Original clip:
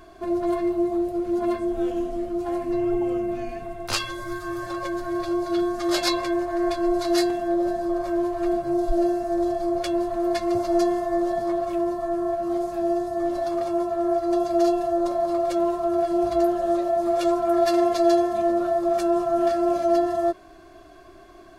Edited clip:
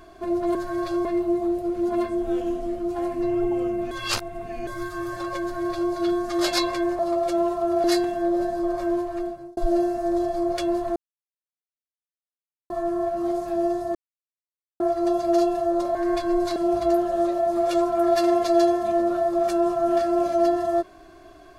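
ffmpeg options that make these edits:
ffmpeg -i in.wav -filter_complex "[0:a]asplit=14[link_01][link_02][link_03][link_04][link_05][link_06][link_07][link_08][link_09][link_10][link_11][link_12][link_13][link_14];[link_01]atrim=end=0.552[link_15];[link_02]atrim=start=4.918:end=5.422[link_16];[link_03]atrim=start=0.548:end=3.412[link_17];[link_04]atrim=start=3.408:end=4.172,asetpts=PTS-STARTPTS,areverse[link_18];[link_05]atrim=start=4.168:end=6.492[link_19];[link_06]atrim=start=15.208:end=16.062[link_20];[link_07]atrim=start=7.098:end=8.83,asetpts=PTS-STARTPTS,afade=type=out:start_time=1.082:duration=0.65[link_21];[link_08]atrim=start=8.83:end=10.22,asetpts=PTS-STARTPTS,afade=type=in:duration=0.004:curve=hsin,afade=type=out:start_time=1.386:duration=0.004:curve=hsin[link_22];[link_09]atrim=start=10.22:end=11.96,asetpts=PTS-STARTPTS,volume=0[link_23];[link_10]atrim=start=11.96:end=13.21,asetpts=PTS-STARTPTS,afade=type=in:duration=0.004:curve=hsin,afade=type=out:start_time=1.246:duration=0.004:curve=hsin[link_24];[link_11]atrim=start=13.21:end=14.06,asetpts=PTS-STARTPTS,volume=0[link_25];[link_12]atrim=start=14.06:end=15.212,asetpts=PTS-STARTPTS,afade=type=in:duration=0.004:curve=hsin[link_26];[link_13]atrim=start=6.488:end=7.102[link_27];[link_14]atrim=start=16.058[link_28];[link_15][link_16]acrossfade=duration=0.004:curve1=hsin:curve2=hsin[link_29];[link_29][link_17]acrossfade=duration=0.004:curve1=hsin:curve2=hsin[link_30];[link_30][link_18]acrossfade=duration=0.004:curve1=hsin:curve2=hsin[link_31];[link_31][link_19]acrossfade=duration=0.004:curve1=hsin:curve2=hsin[link_32];[link_32][link_20]acrossfade=duration=0.004:curve1=hsin:curve2=hsin[link_33];[link_21][link_22][link_23][link_24][link_25][link_26]concat=n=6:v=0:a=1[link_34];[link_33][link_34]acrossfade=duration=0.004:curve1=hsin:curve2=hsin[link_35];[link_35][link_27]acrossfade=duration=0.004:curve1=hsin:curve2=hsin[link_36];[link_36][link_28]acrossfade=duration=0.004:curve1=hsin:curve2=hsin" out.wav

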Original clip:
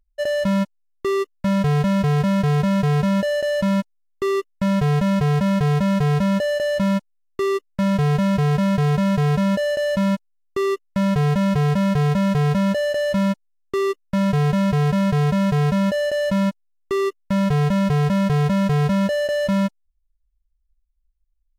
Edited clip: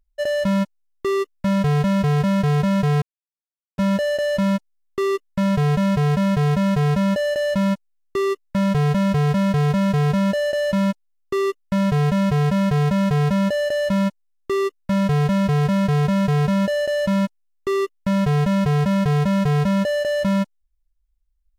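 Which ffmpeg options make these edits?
ffmpeg -i in.wav -filter_complex "[0:a]asplit=2[link_01][link_02];[link_01]atrim=end=3.02,asetpts=PTS-STARTPTS,afade=type=out:start_time=3.016:duration=0.004:curve=hsin,apad=pad_dur=0.76[link_03];[link_02]atrim=start=3.02,asetpts=PTS-STARTPTS,afade=type=in:duration=0.004:curve=hsin[link_04];[link_03][link_04]concat=n=2:v=0:a=1" out.wav

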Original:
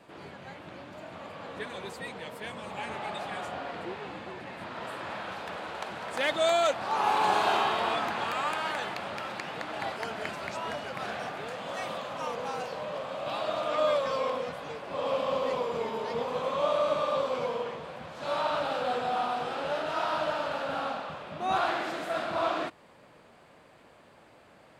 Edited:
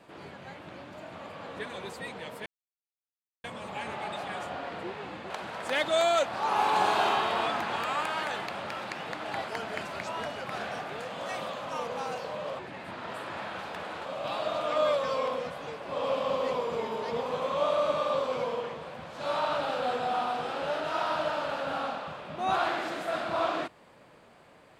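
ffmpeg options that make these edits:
ffmpeg -i in.wav -filter_complex "[0:a]asplit=5[link_01][link_02][link_03][link_04][link_05];[link_01]atrim=end=2.46,asetpts=PTS-STARTPTS,afade=type=out:start_time=2.456:duration=0.004:curve=hsin,apad=pad_dur=0.98[link_06];[link_02]atrim=start=2.46:end=4.322,asetpts=PTS-STARTPTS,afade=type=in:duration=0.004:curve=hsin[link_07];[link_03]atrim=start=5.778:end=13.072[link_08];[link_04]atrim=start=4.318:end=5.782[link_09];[link_05]atrim=start=13.068[link_10];[link_06][link_07]concat=n=2:v=0:a=1[link_11];[link_11][link_08]acrossfade=duration=0.004:curve1=hsin:curve2=hsin[link_12];[link_12][link_09]acrossfade=duration=0.004:curve1=hsin:curve2=hsin[link_13];[link_13][link_10]acrossfade=duration=0.004:curve1=hsin:curve2=hsin" out.wav

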